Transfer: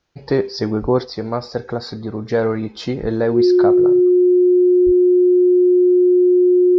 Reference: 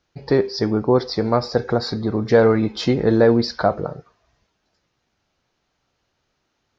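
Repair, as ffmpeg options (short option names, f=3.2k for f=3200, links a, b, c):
-filter_complex "[0:a]bandreject=f=360:w=30,asplit=3[a][b][c];[a]afade=t=out:st=0.81:d=0.02[d];[b]highpass=f=140:w=0.5412,highpass=f=140:w=1.3066,afade=t=in:st=0.81:d=0.02,afade=t=out:st=0.93:d=0.02[e];[c]afade=t=in:st=0.93:d=0.02[f];[d][e][f]amix=inputs=3:normalize=0,asplit=3[g][h][i];[g]afade=t=out:st=3.01:d=0.02[j];[h]highpass=f=140:w=0.5412,highpass=f=140:w=1.3066,afade=t=in:st=3.01:d=0.02,afade=t=out:st=3.13:d=0.02[k];[i]afade=t=in:st=3.13:d=0.02[l];[j][k][l]amix=inputs=3:normalize=0,asplit=3[m][n][o];[m]afade=t=out:st=4.85:d=0.02[p];[n]highpass=f=140:w=0.5412,highpass=f=140:w=1.3066,afade=t=in:st=4.85:d=0.02,afade=t=out:st=4.97:d=0.02[q];[o]afade=t=in:st=4.97:d=0.02[r];[p][q][r]amix=inputs=3:normalize=0,asetnsamples=n=441:p=0,asendcmd='1.05 volume volume 4dB',volume=0dB"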